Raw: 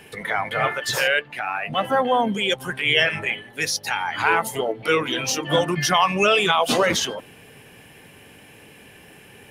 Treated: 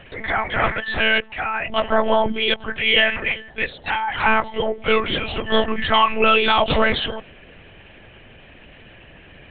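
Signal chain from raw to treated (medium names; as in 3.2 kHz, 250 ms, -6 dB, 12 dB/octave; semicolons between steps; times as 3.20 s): dynamic bell 180 Hz, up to -4 dB, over -41 dBFS, Q 4.7; monotone LPC vocoder at 8 kHz 220 Hz; trim +2.5 dB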